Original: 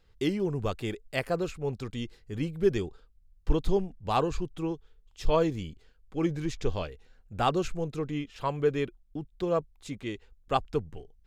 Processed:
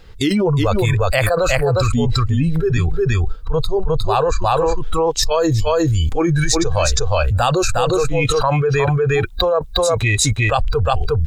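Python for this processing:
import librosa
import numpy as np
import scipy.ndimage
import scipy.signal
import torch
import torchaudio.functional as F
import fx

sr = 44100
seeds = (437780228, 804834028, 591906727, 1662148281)

y = fx.noise_reduce_blind(x, sr, reduce_db=20)
y = fx.high_shelf(y, sr, hz=4200.0, db=fx.steps((0.0, -2.0), (5.22, 11.0), (7.47, 5.5)))
y = y + 10.0 ** (-8.0 / 20.0) * np.pad(y, (int(358 * sr / 1000.0), 0))[:len(y)]
y = fx.env_flatten(y, sr, amount_pct=100)
y = y * 10.0 ** (1.5 / 20.0)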